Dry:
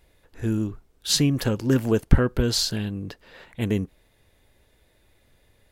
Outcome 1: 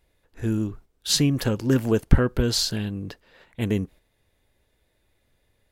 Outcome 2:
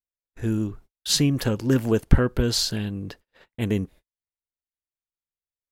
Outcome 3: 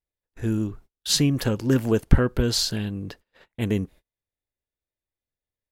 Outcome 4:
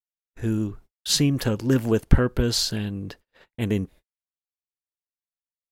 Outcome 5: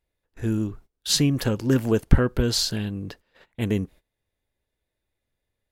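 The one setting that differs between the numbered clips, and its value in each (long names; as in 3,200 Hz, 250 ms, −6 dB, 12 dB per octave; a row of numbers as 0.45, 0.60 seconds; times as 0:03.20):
noise gate, range: −7, −46, −33, −58, −20 decibels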